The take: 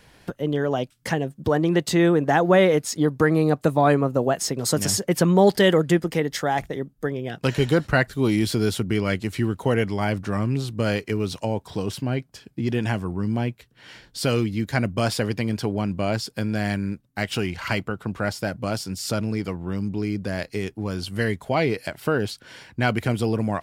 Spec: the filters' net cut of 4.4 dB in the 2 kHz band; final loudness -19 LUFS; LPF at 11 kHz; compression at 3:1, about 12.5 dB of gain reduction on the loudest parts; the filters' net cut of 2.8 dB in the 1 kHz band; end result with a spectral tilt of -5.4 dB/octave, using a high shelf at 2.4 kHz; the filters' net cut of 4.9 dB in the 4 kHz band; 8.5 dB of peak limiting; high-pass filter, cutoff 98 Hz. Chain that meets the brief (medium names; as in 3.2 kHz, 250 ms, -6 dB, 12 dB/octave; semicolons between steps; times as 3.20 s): high-pass 98 Hz; low-pass 11 kHz; peaking EQ 1 kHz -3.5 dB; peaking EQ 2 kHz -4 dB; treble shelf 2.4 kHz +3.5 dB; peaking EQ 4 kHz -9 dB; compression 3:1, threshold -31 dBFS; trim +16 dB; peak limiter -8 dBFS